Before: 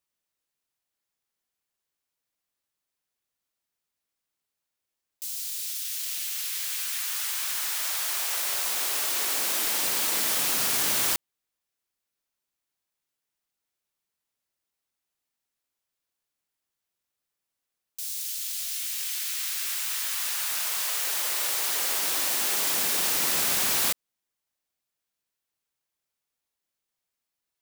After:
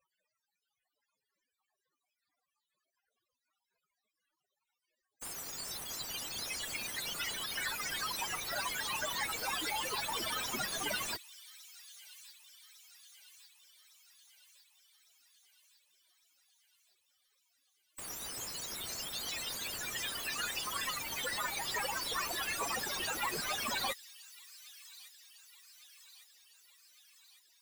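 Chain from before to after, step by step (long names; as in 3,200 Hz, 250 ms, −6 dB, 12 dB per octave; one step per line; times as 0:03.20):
time-frequency cells dropped at random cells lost 27%
reverb reduction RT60 1.3 s
in parallel at +2 dB: brickwall limiter −24.5 dBFS, peak gain reduction 9 dB
on the sum: spectral peaks only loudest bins 32
mid-hump overdrive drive 19 dB, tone 1,400 Hz, clips at −20 dBFS
tape wow and flutter 22 cents
on a send: delay with a high-pass on its return 1,155 ms, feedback 60%, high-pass 3,300 Hz, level −15 dB
on the sum: level +1 dB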